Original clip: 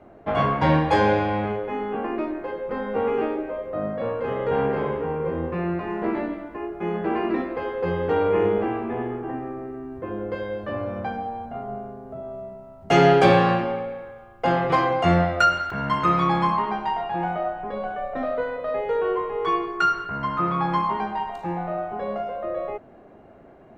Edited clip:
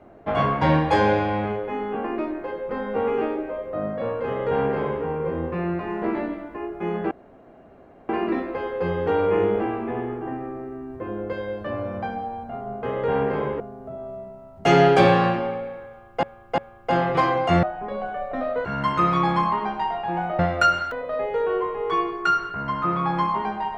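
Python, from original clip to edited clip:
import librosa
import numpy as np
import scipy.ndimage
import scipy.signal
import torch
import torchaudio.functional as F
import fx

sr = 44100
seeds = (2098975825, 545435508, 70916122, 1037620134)

y = fx.edit(x, sr, fx.duplicate(start_s=4.26, length_s=0.77, to_s=11.85),
    fx.insert_room_tone(at_s=7.11, length_s=0.98),
    fx.repeat(start_s=14.13, length_s=0.35, count=3),
    fx.swap(start_s=15.18, length_s=0.53, other_s=17.45, other_length_s=1.02), tone=tone)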